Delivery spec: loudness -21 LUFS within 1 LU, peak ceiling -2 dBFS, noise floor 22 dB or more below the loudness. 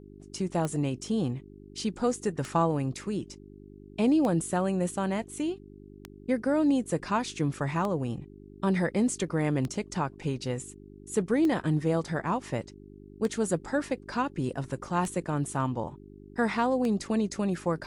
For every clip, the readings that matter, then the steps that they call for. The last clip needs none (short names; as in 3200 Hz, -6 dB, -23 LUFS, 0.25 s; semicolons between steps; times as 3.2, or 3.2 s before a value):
clicks 10; hum 50 Hz; harmonics up to 400 Hz; hum level -51 dBFS; loudness -29.5 LUFS; peak -15.5 dBFS; loudness target -21.0 LUFS
-> de-click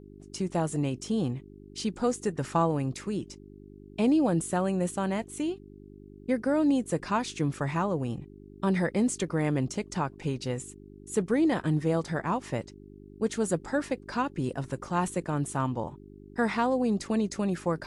clicks 0; hum 50 Hz; harmonics up to 400 Hz; hum level -51 dBFS
-> de-hum 50 Hz, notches 8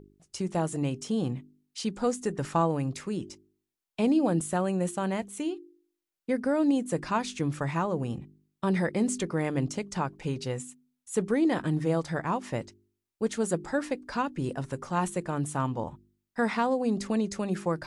hum none; loudness -30.0 LUFS; peak -15.5 dBFS; loudness target -21.0 LUFS
-> gain +9 dB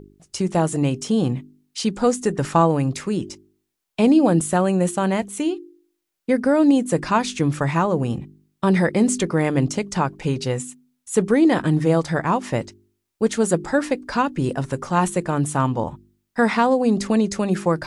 loudness -21.0 LUFS; peak -6.5 dBFS; noise floor -77 dBFS